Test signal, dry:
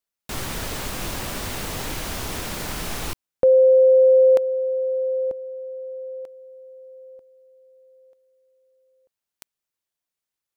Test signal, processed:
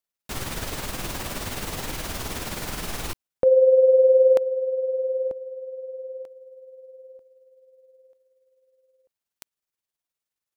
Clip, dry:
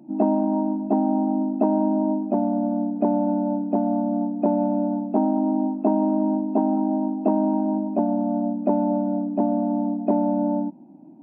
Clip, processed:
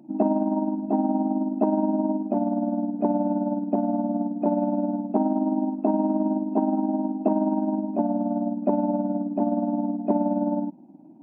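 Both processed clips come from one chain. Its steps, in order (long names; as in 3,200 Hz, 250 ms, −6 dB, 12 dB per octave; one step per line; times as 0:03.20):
amplitude tremolo 19 Hz, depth 46%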